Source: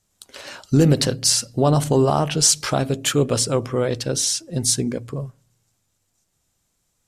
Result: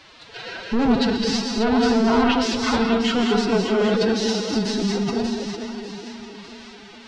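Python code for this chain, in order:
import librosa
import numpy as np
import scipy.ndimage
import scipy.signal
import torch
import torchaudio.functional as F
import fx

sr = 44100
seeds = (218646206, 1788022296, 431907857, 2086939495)

p1 = fx.notch_comb(x, sr, f0_hz=350.0)
p2 = fx.quant_dither(p1, sr, seeds[0], bits=6, dither='triangular')
p3 = p1 + F.gain(torch.from_numpy(p2), -7.0).numpy()
p4 = 10.0 ** (-18.5 / 20.0) * np.tanh(p3 / 10.0 ** (-18.5 / 20.0))
p5 = scipy.signal.sosfilt(scipy.signal.butter(4, 4400.0, 'lowpass', fs=sr, output='sos'), p4)
p6 = p5 + fx.echo_split(p5, sr, split_hz=610.0, low_ms=451, high_ms=591, feedback_pct=52, wet_db=-8, dry=0)
p7 = fx.rev_gated(p6, sr, seeds[1], gate_ms=240, shape='rising', drr_db=2.0)
p8 = fx.pitch_keep_formants(p7, sr, semitones=9.0)
y = F.gain(torch.from_numpy(p8), 2.0).numpy()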